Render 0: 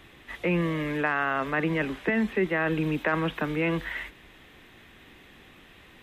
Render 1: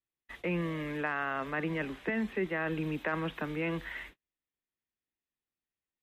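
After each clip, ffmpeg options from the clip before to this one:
-af "agate=range=0.01:threshold=0.00708:ratio=16:detection=peak,volume=0.447"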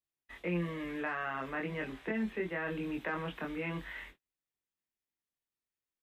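-filter_complex "[0:a]asplit=2[s0][s1];[s1]adelay=23,volume=0.75[s2];[s0][s2]amix=inputs=2:normalize=0,volume=0.562"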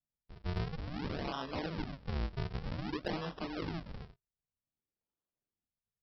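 -af "aresample=11025,acrusher=samples=23:mix=1:aa=0.000001:lfo=1:lforange=36.8:lforate=0.53,aresample=44100,asoftclip=type=hard:threshold=0.0531,volume=0.891"

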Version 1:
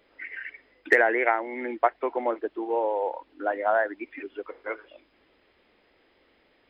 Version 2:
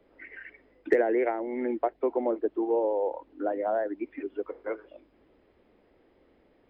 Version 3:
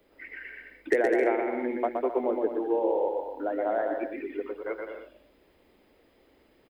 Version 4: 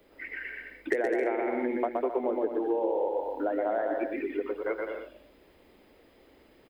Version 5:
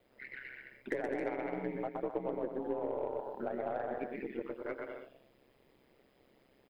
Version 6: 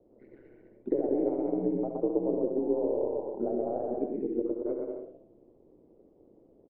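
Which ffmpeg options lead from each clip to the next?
-filter_complex "[0:a]tiltshelf=f=1100:g=9,acrossover=split=180|610|2600[s0][s1][s2][s3];[s2]acompressor=threshold=0.0251:ratio=6[s4];[s0][s1][s4][s3]amix=inputs=4:normalize=0,volume=0.668"
-af "crystalizer=i=4:c=0,aecho=1:1:120|204|262.8|304|332.8:0.631|0.398|0.251|0.158|0.1,volume=0.794"
-af "acompressor=threshold=0.0355:ratio=4,volume=1.5"
-af "aeval=exprs='val(0)*sin(2*PI*66*n/s)':c=same,aeval=exprs='0.178*(cos(1*acos(clip(val(0)/0.178,-1,1)))-cos(1*PI/2))+0.00501*(cos(8*acos(clip(val(0)/0.178,-1,1)))-cos(8*PI/2))':c=same,volume=0.531"
-filter_complex "[0:a]firequalizer=gain_entry='entry(160,0);entry(320,7);entry(1700,-30)':delay=0.05:min_phase=1,asplit=2[s0][s1];[s1]aecho=0:1:64|70:0.251|0.299[s2];[s0][s2]amix=inputs=2:normalize=0,volume=1.68"

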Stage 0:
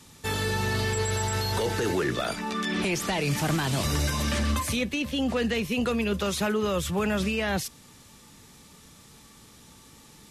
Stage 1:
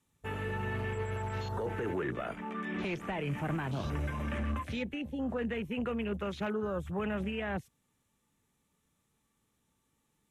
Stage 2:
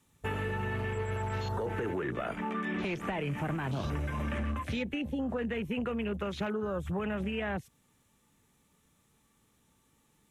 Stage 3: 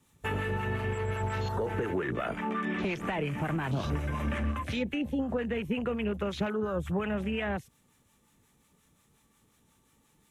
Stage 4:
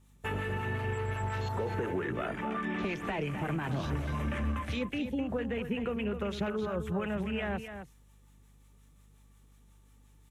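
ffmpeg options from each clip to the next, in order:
-filter_complex "[0:a]afwtdn=0.02,equalizer=f=4800:w=2.1:g=-10.5,acrossover=split=6300[s0][s1];[s1]alimiter=level_in=21.1:limit=0.0631:level=0:latency=1:release=29,volume=0.0473[s2];[s0][s2]amix=inputs=2:normalize=0,volume=0.422"
-af "acompressor=threshold=0.0126:ratio=6,volume=2.37"
-filter_complex "[0:a]acrossover=split=750[s0][s1];[s0]aeval=exprs='val(0)*(1-0.5/2+0.5/2*cos(2*PI*5.6*n/s))':c=same[s2];[s1]aeval=exprs='val(0)*(1-0.5/2-0.5/2*cos(2*PI*5.6*n/s))':c=same[s3];[s2][s3]amix=inputs=2:normalize=0,volume=1.68"
-af "aeval=exprs='val(0)+0.00126*(sin(2*PI*50*n/s)+sin(2*PI*2*50*n/s)/2+sin(2*PI*3*50*n/s)/3+sin(2*PI*4*50*n/s)/4+sin(2*PI*5*50*n/s)/5)':c=same,aecho=1:1:258:0.355,volume=0.75"

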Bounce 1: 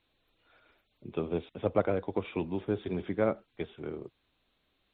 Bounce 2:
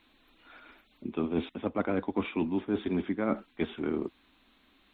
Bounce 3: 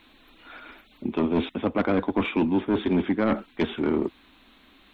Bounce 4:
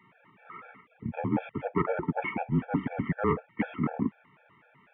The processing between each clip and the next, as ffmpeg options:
-af "equalizer=f=125:t=o:w=1:g=-11,equalizer=f=250:t=o:w=1:g=11,equalizer=f=500:t=o:w=1:g=-6,equalizer=f=1000:t=o:w=1:g=4,equalizer=f=2000:t=o:w=1:g=3,areverse,acompressor=threshold=0.02:ratio=10,areverse,volume=2.66"
-af "aeval=exprs='0.158*sin(PI/2*1.78*val(0)/0.158)':c=same"
-af "highpass=f=320:t=q:w=0.5412,highpass=f=320:t=q:w=1.307,lowpass=f=2400:t=q:w=0.5176,lowpass=f=2400:t=q:w=0.7071,lowpass=f=2400:t=q:w=1.932,afreqshift=-130,afftfilt=real='re*gt(sin(2*PI*4*pts/sr)*(1-2*mod(floor(b*sr/1024/450),2)),0)':imag='im*gt(sin(2*PI*4*pts/sr)*(1-2*mod(floor(b*sr/1024/450),2)),0)':win_size=1024:overlap=0.75,volume=1.26"

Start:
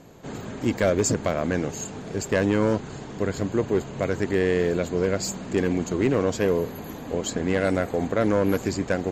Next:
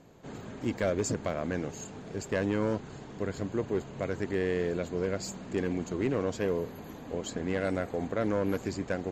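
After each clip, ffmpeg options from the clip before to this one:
-af "highshelf=f=9400:g=-8,volume=0.422"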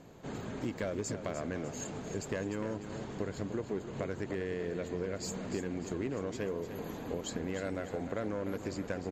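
-filter_complex "[0:a]acompressor=threshold=0.0178:ratio=6,asplit=2[s0][s1];[s1]aecho=0:1:300|600|900|1200|1500:0.316|0.142|0.064|0.0288|0.013[s2];[s0][s2]amix=inputs=2:normalize=0,volume=1.26"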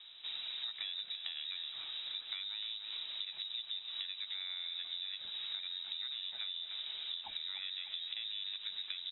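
-af "acompressor=threshold=0.0126:ratio=6,lowpass=f=3400:t=q:w=0.5098,lowpass=f=3400:t=q:w=0.6013,lowpass=f=3400:t=q:w=0.9,lowpass=f=3400:t=q:w=2.563,afreqshift=-4000"

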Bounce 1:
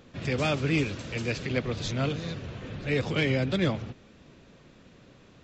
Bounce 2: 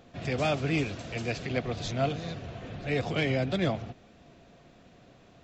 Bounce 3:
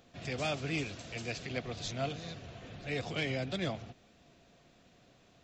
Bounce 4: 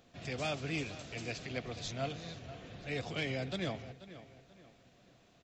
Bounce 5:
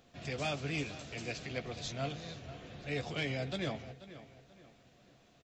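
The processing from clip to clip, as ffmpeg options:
-af "equalizer=f=700:t=o:w=0.24:g=12.5,volume=0.75"
-af "highshelf=f=2700:g=8.5,volume=0.398"
-filter_complex "[0:a]asplit=2[s0][s1];[s1]adelay=485,lowpass=f=3800:p=1,volume=0.188,asplit=2[s2][s3];[s3]adelay=485,lowpass=f=3800:p=1,volume=0.36,asplit=2[s4][s5];[s5]adelay=485,lowpass=f=3800:p=1,volume=0.36[s6];[s0][s2][s4][s6]amix=inputs=4:normalize=0,volume=0.794"
-filter_complex "[0:a]asplit=2[s0][s1];[s1]adelay=14,volume=0.299[s2];[s0][s2]amix=inputs=2:normalize=0"

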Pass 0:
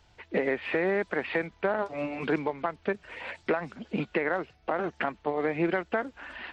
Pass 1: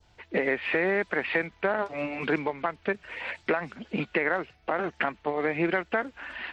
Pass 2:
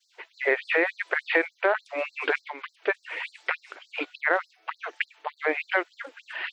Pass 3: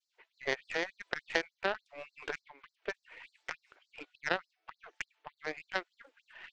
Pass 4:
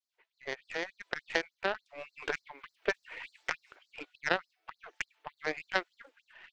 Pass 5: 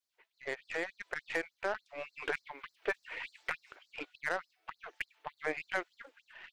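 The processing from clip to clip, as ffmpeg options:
-af "adynamicequalizer=threshold=0.00501:dfrequency=2200:dqfactor=0.9:tfrequency=2200:tqfactor=0.9:attack=5:release=100:ratio=0.375:range=2.5:mode=boostabove:tftype=bell"
-af "afftfilt=real='re*gte(b*sr/1024,260*pow(4100/260,0.5+0.5*sin(2*PI*3.4*pts/sr)))':imag='im*gte(b*sr/1024,260*pow(4100/260,0.5+0.5*sin(2*PI*3.4*pts/sr)))':win_size=1024:overlap=0.75,volume=1.68"
-af "aeval=exprs='0.422*(cos(1*acos(clip(val(0)/0.422,-1,1)))-cos(1*PI/2))+0.119*(cos(3*acos(clip(val(0)/0.422,-1,1)))-cos(3*PI/2))+0.00531*(cos(6*acos(clip(val(0)/0.422,-1,1)))-cos(6*PI/2))':c=same,volume=0.75"
-af "dynaudnorm=f=210:g=7:m=6.31,volume=0.422"
-af "asoftclip=type=tanh:threshold=0.0501,volume=1.33"

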